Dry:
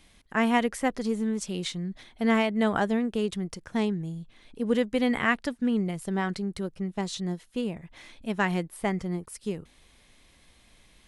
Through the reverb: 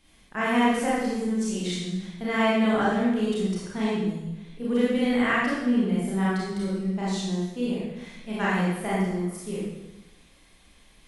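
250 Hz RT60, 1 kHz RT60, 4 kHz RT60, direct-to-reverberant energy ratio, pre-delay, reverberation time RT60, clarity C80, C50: 1.1 s, 0.95 s, 0.95 s, -8.5 dB, 27 ms, 1.0 s, 0.5 dB, -2.5 dB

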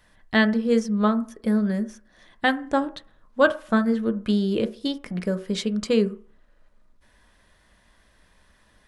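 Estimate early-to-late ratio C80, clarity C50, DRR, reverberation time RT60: 21.0 dB, 16.5 dB, 9.0 dB, 0.45 s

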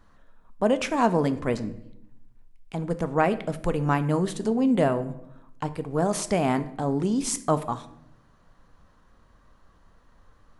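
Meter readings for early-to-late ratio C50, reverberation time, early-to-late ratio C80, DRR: 15.0 dB, 0.80 s, 18.0 dB, 11.0 dB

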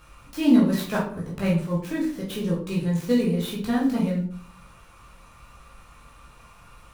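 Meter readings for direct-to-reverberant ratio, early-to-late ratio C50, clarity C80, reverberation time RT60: -5.5 dB, 5.0 dB, 10.0 dB, 0.50 s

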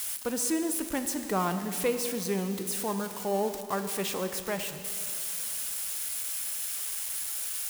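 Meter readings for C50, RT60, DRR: 9.0 dB, 2.7 s, 8.0 dB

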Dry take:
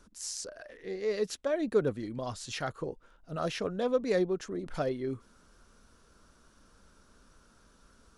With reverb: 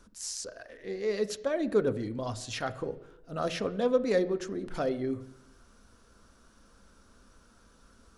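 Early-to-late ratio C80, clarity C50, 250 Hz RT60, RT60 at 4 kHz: 18.0 dB, 16.0 dB, 0.85 s, 0.85 s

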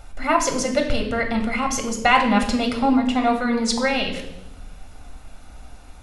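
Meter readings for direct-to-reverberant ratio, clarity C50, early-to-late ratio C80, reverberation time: 2.5 dB, 8.0 dB, 10.5 dB, 0.85 s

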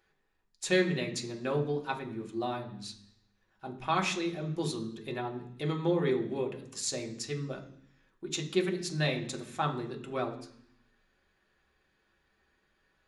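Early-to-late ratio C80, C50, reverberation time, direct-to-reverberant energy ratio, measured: 13.5 dB, 11.0 dB, 0.65 s, 1.0 dB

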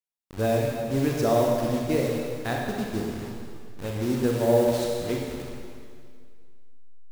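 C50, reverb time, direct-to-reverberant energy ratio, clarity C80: 0.0 dB, 2.1 s, -1.5 dB, 1.5 dB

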